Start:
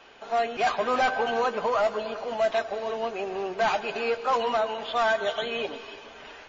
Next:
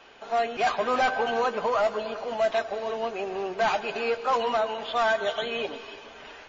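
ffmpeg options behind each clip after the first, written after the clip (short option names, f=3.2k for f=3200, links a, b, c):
-af anull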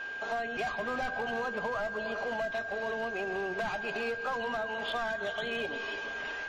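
-filter_complex "[0:a]acrossover=split=190[a][b];[b]acompressor=threshold=-35dB:ratio=8[c];[a][c]amix=inputs=2:normalize=0,aeval=exprs='val(0)+0.0112*sin(2*PI*1600*n/s)':c=same,volume=29.5dB,asoftclip=hard,volume=-29.5dB,volume=2.5dB"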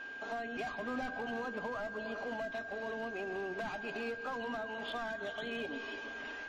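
-af "equalizer=f=270:w=2.9:g=11,volume=-6.5dB"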